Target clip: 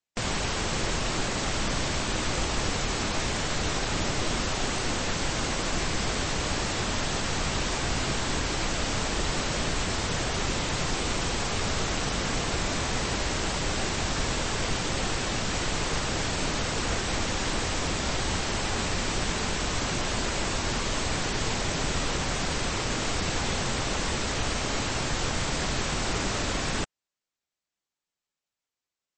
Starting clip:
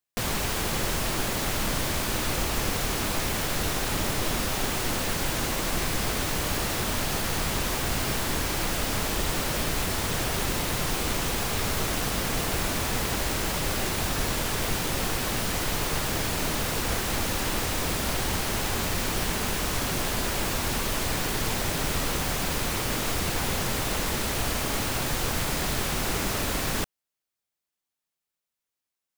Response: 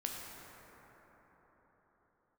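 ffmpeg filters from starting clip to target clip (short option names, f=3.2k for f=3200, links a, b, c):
-ar 22050 -c:a libmp3lame -b:a 32k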